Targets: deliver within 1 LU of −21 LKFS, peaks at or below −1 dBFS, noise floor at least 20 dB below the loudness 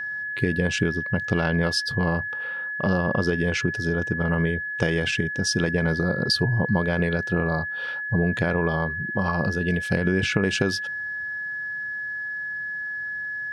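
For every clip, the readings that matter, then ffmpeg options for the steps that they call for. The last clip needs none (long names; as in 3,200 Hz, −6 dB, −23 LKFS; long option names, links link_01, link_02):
interfering tone 1,700 Hz; level of the tone −28 dBFS; integrated loudness −24.5 LKFS; sample peak −7.0 dBFS; target loudness −21.0 LKFS
→ -af "bandreject=frequency=1700:width=30"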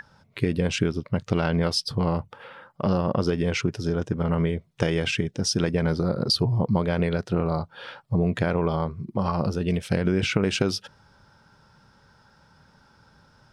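interfering tone none found; integrated loudness −25.5 LKFS; sample peak −7.0 dBFS; target loudness −21.0 LKFS
→ -af "volume=4.5dB"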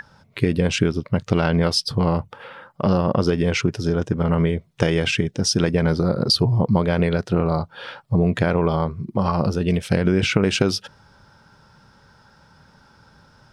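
integrated loudness −21.0 LKFS; sample peak −2.5 dBFS; background noise floor −56 dBFS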